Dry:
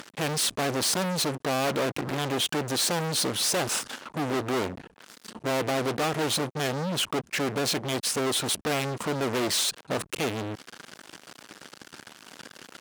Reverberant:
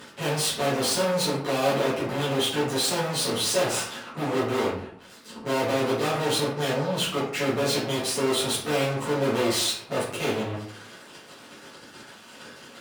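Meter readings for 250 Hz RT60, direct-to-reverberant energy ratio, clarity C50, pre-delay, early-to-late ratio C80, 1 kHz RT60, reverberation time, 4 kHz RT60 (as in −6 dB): 0.70 s, −11.0 dB, 3.0 dB, 6 ms, 7.0 dB, 0.60 s, 0.60 s, 0.40 s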